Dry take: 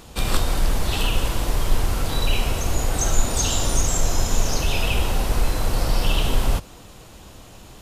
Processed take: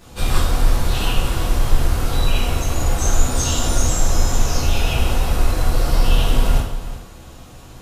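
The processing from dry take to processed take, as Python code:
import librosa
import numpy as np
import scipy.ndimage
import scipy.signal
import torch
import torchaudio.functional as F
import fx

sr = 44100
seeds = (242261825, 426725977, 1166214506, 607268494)

y = x + 10.0 ** (-13.5 / 20.0) * np.pad(x, (int(362 * sr / 1000.0), 0))[:len(x)]
y = fx.rev_plate(y, sr, seeds[0], rt60_s=0.72, hf_ratio=0.65, predelay_ms=0, drr_db=-9.0)
y = y * librosa.db_to_amplitude(-7.5)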